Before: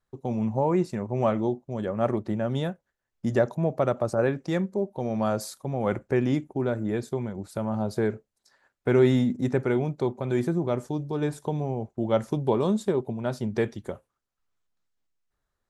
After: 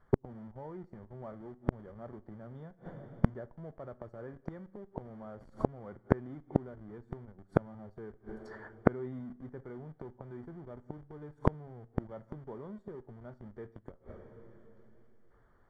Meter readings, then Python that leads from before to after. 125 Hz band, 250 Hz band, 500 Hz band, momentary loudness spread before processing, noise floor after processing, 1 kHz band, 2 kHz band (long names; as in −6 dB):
−10.0 dB, −12.0 dB, −14.0 dB, 7 LU, −65 dBFS, −11.0 dB, −12.5 dB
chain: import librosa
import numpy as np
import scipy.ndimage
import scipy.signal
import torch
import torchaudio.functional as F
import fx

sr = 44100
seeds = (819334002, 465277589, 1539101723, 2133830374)

p1 = fx.schmitt(x, sr, flips_db=-29.5)
p2 = x + (p1 * librosa.db_to_amplitude(-4.0))
p3 = scipy.signal.savgol_filter(p2, 41, 4, mode='constant')
p4 = fx.rev_double_slope(p3, sr, seeds[0], early_s=0.48, late_s=3.2, knee_db=-28, drr_db=15.0)
p5 = fx.gate_flip(p4, sr, shuts_db=-25.0, range_db=-39)
y = p5 * librosa.db_to_amplitude(15.5)